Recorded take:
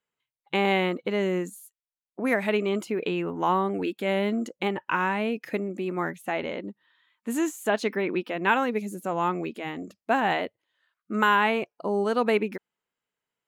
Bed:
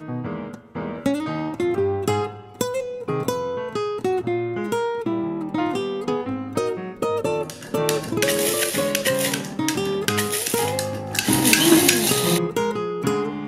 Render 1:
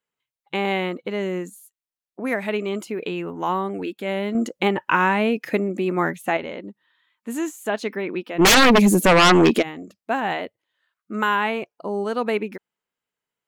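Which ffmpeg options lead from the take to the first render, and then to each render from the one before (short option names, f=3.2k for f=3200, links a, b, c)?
-filter_complex "[0:a]asettb=1/sr,asplit=3[a][b][c];[a]atrim=end=2.594[d];[b]atrim=start=2.59:end=3.8,asetpts=PTS-STARTPTS,afade=t=in:d=0.004:c=qsin,afade=t=out:st=1.206:d=0.004:c=qsin,equalizer=f=11k:t=o:w=2:g=3.5[e];[c]atrim=start=3.796[f];[d][e]acrossfade=d=0.004:c1=hsin:c2=qsin[g];[g][f]acrossfade=d=0.004:c1=qsin:c2=hsin,asplit=3[h][i][j];[h]afade=t=out:st=8.38:d=0.02[k];[i]aeval=exprs='0.335*sin(PI/2*7.08*val(0)/0.335)':c=same,afade=t=in:st=8.38:d=0.02,afade=t=out:st=9.61:d=0.02[l];[j]afade=t=in:st=9.61:d=0.02[m];[k][l][m]amix=inputs=3:normalize=0,asplit=3[n][o][p];[n]atrim=end=4.352[q];[o]atrim=start=4.348:end=6.372,asetpts=PTS-STARTPTS,volume=7dB[r];[p]atrim=start=6.368[s];[q][r]acrossfade=d=0.004:c1=hsin:c2=hsin[t];[t][s]acrossfade=d=0.004:c1=hsin:c2=hsin"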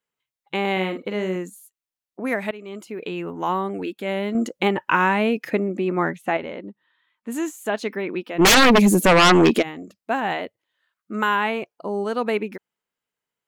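-filter_complex "[0:a]asettb=1/sr,asplit=3[a][b][c];[a]atrim=end=0.724[d];[b]atrim=start=0.72:end=1.36,asetpts=PTS-STARTPTS,afade=t=in:d=0.004:c=qsin,afade=t=out:st=0.636:d=0.004:c=qsin,asplit=2[e][f];[f]adelay=48,volume=-8dB[g];[e][g]amix=inputs=2:normalize=0,atrim=end_sample=28224[h];[c]atrim=start=1.356[i];[d][h]acrossfade=d=0.004:c1=hsin:c2=qsin[j];[j][i]acrossfade=d=0.004:c1=qsin:c2=hsin,asettb=1/sr,asplit=3[k][l][m];[k]atrim=end=5.504[n];[l]atrim=start=5.5:end=7.32,asetpts=PTS-STARTPTS,afade=t=in:d=0.004:c=qsin,afade=t=out:st=1.816:d=0.004:c=qsin,lowpass=f=3.2k:p=1[o];[m]atrim=start=7.316[p];[n][o]acrossfade=d=0.004:c1=hsin:c2=qsin[q];[q][p]acrossfade=d=0.004:c1=qsin:c2=hsin,asplit=2[r][s];[r]atrim=end=2.51,asetpts=PTS-STARTPTS,afade=t=out:st=2.506:d=0.004:c=hsin:silence=0.133352[t];[s]atrim=start=2.51,asetpts=PTS-STARTPTS,afade=t=in:d=0.77:silence=0.133352[u];[t][u]concat=n=2:v=0:a=1"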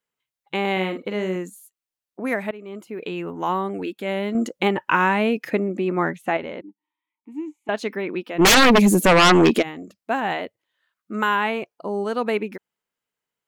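-filter_complex "[0:a]asettb=1/sr,asplit=3[a][b][c];[a]atrim=end=2.424[d];[b]atrim=start=2.42:end=2.93,asetpts=PTS-STARTPTS,afade=t=in:d=0.004:c=qsin,afade=t=out:st=0.506:d=0.004:c=qsin,equalizer=f=5.5k:w=0.49:g=-7.5[e];[c]atrim=start=2.926[f];[d][e]acrossfade=d=0.004:c1=hsin:c2=qsin[g];[g][f]acrossfade=d=0.004:c1=qsin:c2=hsin,asettb=1/sr,asplit=3[h][i][j];[h]atrim=end=6.614[k];[i]atrim=start=6.61:end=7.69,asetpts=PTS-STARTPTS,afade=t=in:d=0.004:c=qsin,afade=t=out:st=1.076:d=0.004:c=qsin,asplit=3[l][m][n];[l]bandpass=f=300:t=q:w=8,volume=0dB[o];[m]bandpass=f=870:t=q:w=8,volume=-6dB[p];[n]bandpass=f=2.24k:t=q:w=8,volume=-9dB[q];[o][p][q]amix=inputs=3:normalize=0[r];[j]atrim=start=7.686[s];[k][r]acrossfade=d=0.004:c1=hsin:c2=qsin[t];[t][s]acrossfade=d=0.004:c1=qsin:c2=hsin"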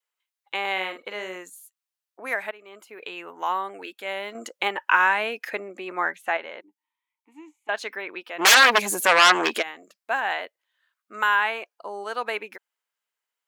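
-af "highpass=750,adynamicequalizer=threshold=0.01:dfrequency=1600:dqfactor=7.9:tfrequency=1600:tqfactor=7.9:attack=5:release=100:ratio=0.375:range=3:mode=boostabove:tftype=bell"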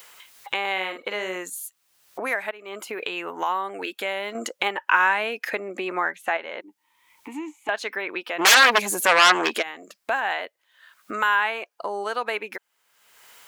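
-af "acompressor=mode=upward:threshold=-21dB:ratio=2.5"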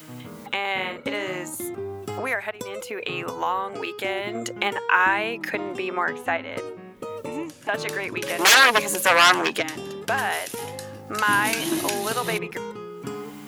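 -filter_complex "[1:a]volume=-11dB[a];[0:a][a]amix=inputs=2:normalize=0"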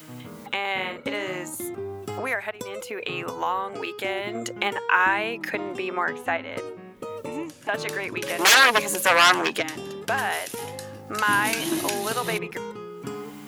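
-af "volume=-1dB"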